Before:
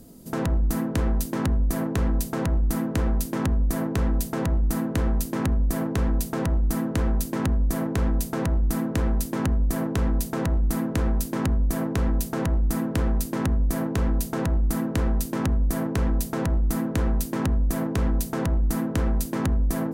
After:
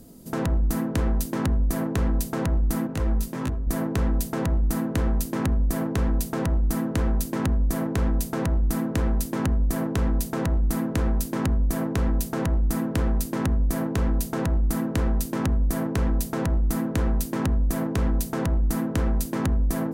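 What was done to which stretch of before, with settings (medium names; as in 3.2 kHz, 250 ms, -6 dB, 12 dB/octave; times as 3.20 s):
2.87–3.67 s: detune thickener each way 12 cents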